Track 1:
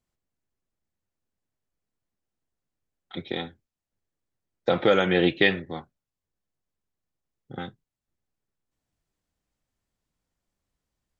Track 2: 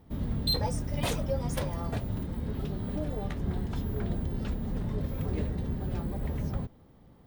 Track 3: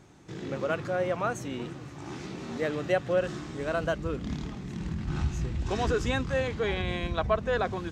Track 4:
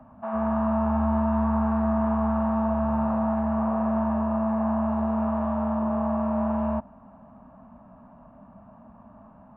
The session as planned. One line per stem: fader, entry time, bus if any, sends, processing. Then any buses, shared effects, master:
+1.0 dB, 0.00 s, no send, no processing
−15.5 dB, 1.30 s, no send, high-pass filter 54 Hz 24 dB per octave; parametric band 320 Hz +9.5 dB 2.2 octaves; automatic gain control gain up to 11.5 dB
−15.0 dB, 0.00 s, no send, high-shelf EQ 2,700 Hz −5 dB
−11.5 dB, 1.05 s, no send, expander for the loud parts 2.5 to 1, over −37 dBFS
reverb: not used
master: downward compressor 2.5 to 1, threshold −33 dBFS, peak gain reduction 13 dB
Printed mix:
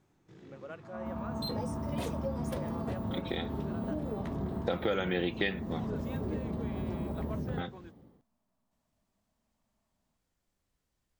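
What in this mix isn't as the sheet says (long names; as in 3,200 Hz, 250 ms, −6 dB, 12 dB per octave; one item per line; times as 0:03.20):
stem 2: entry 1.30 s → 0.95 s
stem 4: entry 1.05 s → 0.60 s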